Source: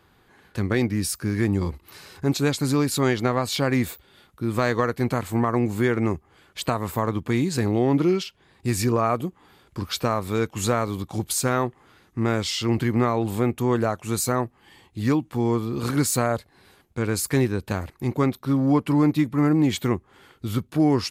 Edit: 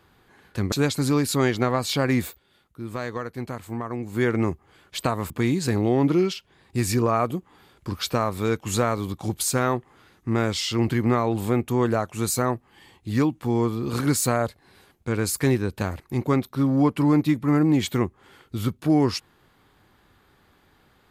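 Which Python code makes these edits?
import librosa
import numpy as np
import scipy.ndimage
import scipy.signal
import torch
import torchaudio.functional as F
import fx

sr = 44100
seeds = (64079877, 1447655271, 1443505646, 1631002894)

y = fx.edit(x, sr, fx.cut(start_s=0.72, length_s=1.63),
    fx.fade_down_up(start_s=3.9, length_s=1.97, db=-8.5, fade_s=0.13),
    fx.cut(start_s=6.93, length_s=0.27), tone=tone)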